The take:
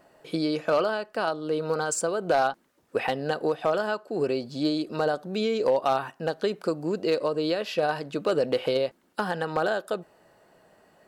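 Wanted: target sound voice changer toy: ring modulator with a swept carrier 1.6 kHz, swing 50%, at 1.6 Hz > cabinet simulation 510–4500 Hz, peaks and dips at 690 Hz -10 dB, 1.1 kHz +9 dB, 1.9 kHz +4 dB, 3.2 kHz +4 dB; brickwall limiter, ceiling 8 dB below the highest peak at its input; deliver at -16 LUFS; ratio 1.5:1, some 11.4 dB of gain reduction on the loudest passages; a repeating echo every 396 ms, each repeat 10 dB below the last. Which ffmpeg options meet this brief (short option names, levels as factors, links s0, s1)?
-af "acompressor=threshold=0.00251:ratio=1.5,alimiter=level_in=2.11:limit=0.0631:level=0:latency=1,volume=0.473,aecho=1:1:396|792|1188|1584:0.316|0.101|0.0324|0.0104,aeval=exprs='val(0)*sin(2*PI*1600*n/s+1600*0.5/1.6*sin(2*PI*1.6*n/s))':c=same,highpass=510,equalizer=f=690:t=q:w=4:g=-10,equalizer=f=1100:t=q:w=4:g=9,equalizer=f=1900:t=q:w=4:g=4,equalizer=f=3200:t=q:w=4:g=4,lowpass=f=4500:w=0.5412,lowpass=f=4500:w=1.3066,volume=14.1"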